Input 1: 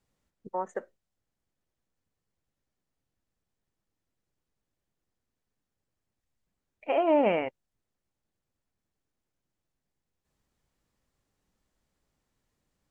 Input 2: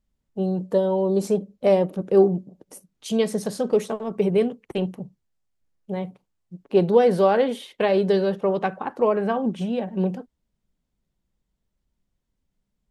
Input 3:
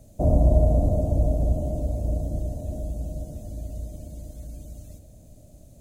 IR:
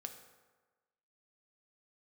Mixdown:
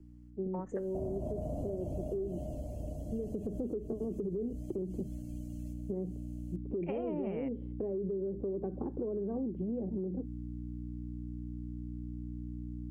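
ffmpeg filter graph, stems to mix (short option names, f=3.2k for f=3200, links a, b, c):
-filter_complex "[0:a]acrossover=split=270[a][b];[b]acompressor=threshold=-36dB:ratio=6[c];[a][c]amix=inputs=2:normalize=0,lowshelf=f=260:g=11.5,volume=-3.5dB[d];[1:a]aeval=exprs='val(0)+0.0126*(sin(2*PI*60*n/s)+sin(2*PI*2*60*n/s)/2+sin(2*PI*3*60*n/s)/3+sin(2*PI*4*60*n/s)/4+sin(2*PI*5*60*n/s)/5)':c=same,lowpass=f=350:t=q:w=3.5,volume=-2.5dB,afade=t=in:st=3.26:d=0.25:silence=0.223872[e];[2:a]equalizer=f=2.9k:w=3.2:g=9.5,adelay=750,volume=-10dB[f];[e][f]amix=inputs=2:normalize=0,acrossover=split=110|410[g][h][i];[g]acompressor=threshold=-41dB:ratio=4[j];[h]acompressor=threshold=-28dB:ratio=4[k];[i]acompressor=threshold=-33dB:ratio=4[l];[j][k][l]amix=inputs=3:normalize=0,alimiter=level_in=1dB:limit=-24dB:level=0:latency=1:release=113,volume=-1dB,volume=0dB[m];[d][m]amix=inputs=2:normalize=0,asuperstop=centerf=3700:order=4:qfactor=7.2,acompressor=threshold=-32dB:ratio=6"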